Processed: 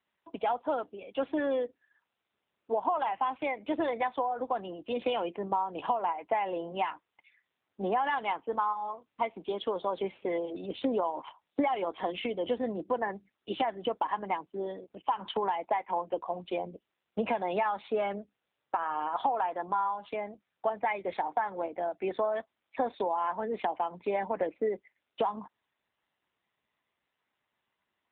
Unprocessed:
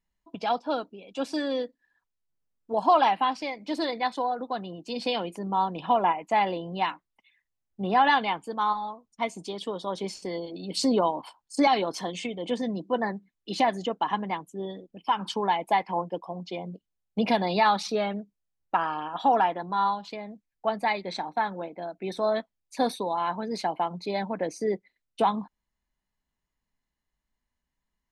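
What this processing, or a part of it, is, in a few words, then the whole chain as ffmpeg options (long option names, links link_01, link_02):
voicemail: -af "highpass=350,lowpass=2900,acompressor=threshold=-30dB:ratio=12,volume=5dB" -ar 8000 -c:a libopencore_amrnb -b:a 7400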